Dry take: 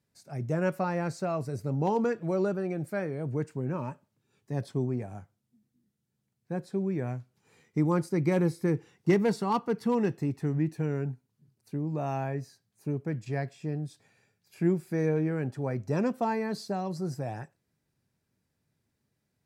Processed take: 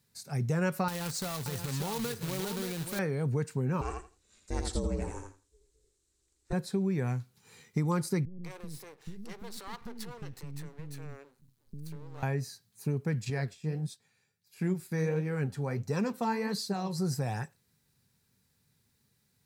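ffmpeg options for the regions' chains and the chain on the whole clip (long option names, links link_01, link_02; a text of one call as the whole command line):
ffmpeg -i in.wav -filter_complex "[0:a]asettb=1/sr,asplit=3[link_01][link_02][link_03];[link_01]atrim=end=0.884[link_04];[link_02]atrim=start=0.88:end=2.99,asetpts=PTS-STARTPTS,afade=type=in:duration=0.004:curve=qsin,afade=type=out:start_time=2.106:duration=0.004:curve=qsin,acrusher=bits=2:mode=log:mix=0:aa=0.000001,acompressor=threshold=-37dB:ratio=4:attack=3.2:release=140:knee=1:detection=peak,aecho=1:1:579:0.422,atrim=end_sample=93051[link_05];[link_03]atrim=start=2.986[link_06];[link_04][link_05]acrossfade=duration=0.004:curve1=hsin:curve2=qsin[link_07];[link_07][link_06]acrossfade=duration=0.004:curve1=qsin:curve2=hsin,asettb=1/sr,asplit=3[link_08][link_09][link_10];[link_08]atrim=end=3.814[link_11];[link_09]atrim=start=3.81:end=6.53,asetpts=PTS-STARTPTS,afade=type=in:duration=0.004:curve=qsin,afade=type=out:start_time=2.716:duration=0.004:curve=qsin,aeval=exprs='val(0)*sin(2*PI*190*n/s)':channel_layout=same,lowpass=frequency=7700:width_type=q:width=3.1,aecho=1:1:82|164|246:0.596|0.107|0.0193,atrim=end_sample=119952[link_12];[link_10]atrim=start=6.526[link_13];[link_11][link_12]acrossfade=duration=0.004:curve1=hsin:curve2=qsin[link_14];[link_14][link_13]acrossfade=duration=0.004:curve1=qsin:curve2=hsin,asettb=1/sr,asplit=3[link_15][link_16][link_17];[link_15]atrim=end=8.254[link_18];[link_16]atrim=start=8.25:end=12.23,asetpts=PTS-STARTPTS,afade=type=in:duration=0.004:curve=qsin,afade=type=out:start_time=3.976:duration=0.004:curve=qsin,acompressor=threshold=-40dB:ratio=5:attack=3.2:release=140:knee=1:detection=peak,aeval=exprs='max(val(0),0)':channel_layout=same,acrossover=split=340[link_19][link_20];[link_20]adelay=190[link_21];[link_19][link_21]amix=inputs=2:normalize=0,atrim=end_sample=175518[link_22];[link_17]atrim=start=12.226[link_23];[link_18][link_22]acrossfade=duration=0.004:curve1=hsin:curve2=qsin[link_24];[link_24][link_23]acrossfade=duration=0.004:curve1=qsin:curve2=hsin,asettb=1/sr,asplit=3[link_25][link_26][link_27];[link_25]atrim=end=13.304[link_28];[link_26]atrim=start=13.3:end=16.98,asetpts=PTS-STARTPTS,afade=type=in:duration=0.004:curve=qsin,afade=type=out:start_time=3.676:duration=0.004:curve=qsin,agate=range=-8dB:threshold=-54dB:ratio=16:release=100:detection=peak,flanger=delay=3.8:depth=9.6:regen=59:speed=1.5:shape=sinusoidal[link_29];[link_27]atrim=start=16.976[link_30];[link_28][link_29]acrossfade=duration=0.004:curve1=hsin:curve2=qsin[link_31];[link_31][link_30]acrossfade=duration=0.004:curve1=qsin:curve2=hsin,equalizer=frequency=315:width_type=o:width=0.33:gain=-10,equalizer=frequency=630:width_type=o:width=0.33:gain=-10,equalizer=frequency=4000:width_type=o:width=0.33:gain=5,acompressor=threshold=-31dB:ratio=5,highshelf=frequency=5700:gain=9,volume=5dB" out.wav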